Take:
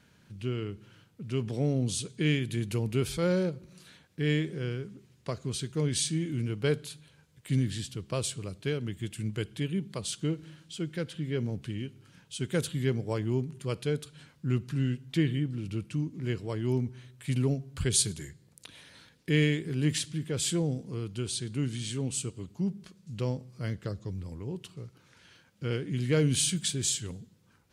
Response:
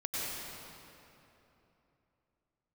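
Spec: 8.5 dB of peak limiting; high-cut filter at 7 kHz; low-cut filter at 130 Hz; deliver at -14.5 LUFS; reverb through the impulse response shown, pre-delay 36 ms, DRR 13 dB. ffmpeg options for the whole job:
-filter_complex "[0:a]highpass=130,lowpass=7000,alimiter=limit=0.0841:level=0:latency=1,asplit=2[s0][s1];[1:a]atrim=start_sample=2205,adelay=36[s2];[s1][s2]afir=irnorm=-1:irlink=0,volume=0.119[s3];[s0][s3]amix=inputs=2:normalize=0,volume=10"

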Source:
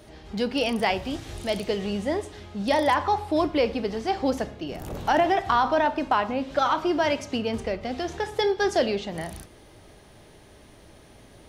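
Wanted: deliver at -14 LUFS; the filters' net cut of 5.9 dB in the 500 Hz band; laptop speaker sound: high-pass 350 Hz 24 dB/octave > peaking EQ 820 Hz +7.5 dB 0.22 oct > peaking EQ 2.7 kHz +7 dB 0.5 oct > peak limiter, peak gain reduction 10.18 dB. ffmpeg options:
-af "highpass=f=350:w=0.5412,highpass=f=350:w=1.3066,equalizer=f=500:t=o:g=-8,equalizer=f=820:t=o:w=0.22:g=7.5,equalizer=f=2700:t=o:w=0.5:g=7,volume=6.31,alimiter=limit=0.75:level=0:latency=1"

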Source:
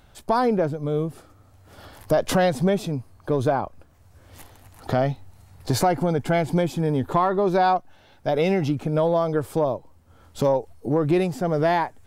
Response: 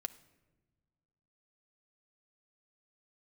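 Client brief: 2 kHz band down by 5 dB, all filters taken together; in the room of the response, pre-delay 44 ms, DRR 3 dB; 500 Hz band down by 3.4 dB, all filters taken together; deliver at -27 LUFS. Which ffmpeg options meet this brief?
-filter_complex "[0:a]equalizer=f=500:t=o:g=-4,equalizer=f=2000:t=o:g=-6.5,asplit=2[s0][s1];[1:a]atrim=start_sample=2205,adelay=44[s2];[s1][s2]afir=irnorm=-1:irlink=0,volume=0.891[s3];[s0][s3]amix=inputs=2:normalize=0,volume=0.708"

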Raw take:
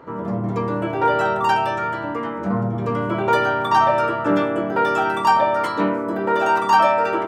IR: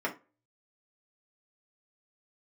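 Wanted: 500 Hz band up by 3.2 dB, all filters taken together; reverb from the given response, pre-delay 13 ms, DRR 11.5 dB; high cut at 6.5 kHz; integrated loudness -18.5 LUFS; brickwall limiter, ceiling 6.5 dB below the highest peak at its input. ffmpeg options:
-filter_complex "[0:a]lowpass=6500,equalizer=f=500:t=o:g=4,alimiter=limit=0.316:level=0:latency=1,asplit=2[s0][s1];[1:a]atrim=start_sample=2205,adelay=13[s2];[s1][s2]afir=irnorm=-1:irlink=0,volume=0.112[s3];[s0][s3]amix=inputs=2:normalize=0,volume=1.06"

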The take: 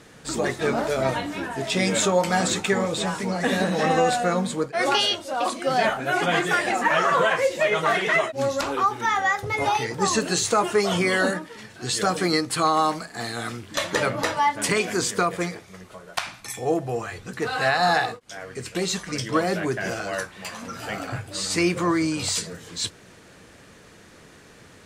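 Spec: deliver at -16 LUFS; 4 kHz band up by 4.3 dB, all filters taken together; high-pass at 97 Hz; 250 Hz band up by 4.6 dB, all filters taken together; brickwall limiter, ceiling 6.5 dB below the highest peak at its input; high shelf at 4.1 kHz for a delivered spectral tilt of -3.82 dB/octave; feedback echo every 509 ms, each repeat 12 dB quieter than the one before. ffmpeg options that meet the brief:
-af "highpass=97,equalizer=f=250:t=o:g=7,equalizer=f=4000:t=o:g=7.5,highshelf=f=4100:g=-4,alimiter=limit=0.251:level=0:latency=1,aecho=1:1:509|1018|1527:0.251|0.0628|0.0157,volume=2.24"

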